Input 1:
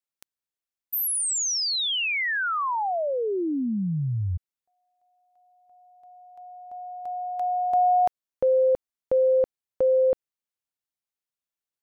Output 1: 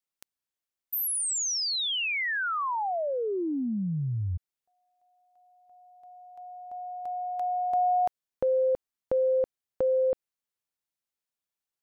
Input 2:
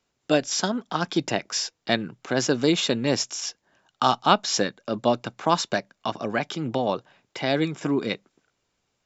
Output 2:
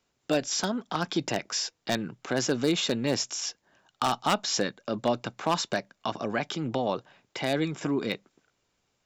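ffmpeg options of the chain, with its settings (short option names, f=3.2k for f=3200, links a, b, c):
-filter_complex "[0:a]asplit=2[a][b];[b]acompressor=threshold=-35dB:ratio=16:attack=14:release=22:knee=6:detection=peak,volume=0dB[c];[a][c]amix=inputs=2:normalize=0,aeval=exprs='0.355*(abs(mod(val(0)/0.355+3,4)-2)-1)':c=same,volume=-6dB"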